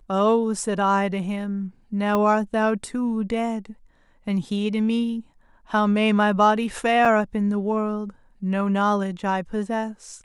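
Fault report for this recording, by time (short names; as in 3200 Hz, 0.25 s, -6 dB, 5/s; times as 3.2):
2.15 pop -11 dBFS
7.05 gap 4.8 ms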